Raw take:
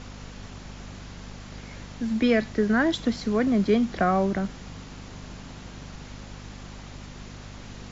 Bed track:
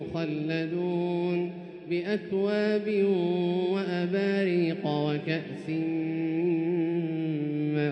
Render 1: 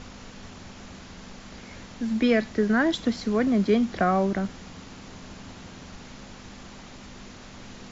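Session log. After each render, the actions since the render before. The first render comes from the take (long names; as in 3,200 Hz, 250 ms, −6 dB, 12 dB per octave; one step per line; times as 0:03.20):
hum removal 50 Hz, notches 3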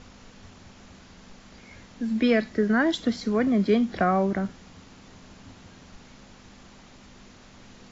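noise reduction from a noise print 6 dB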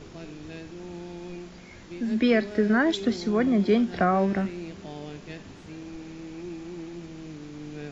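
mix in bed track −11.5 dB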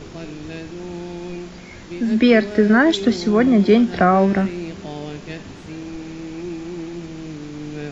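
level +8 dB
brickwall limiter −3 dBFS, peak gain reduction 0.5 dB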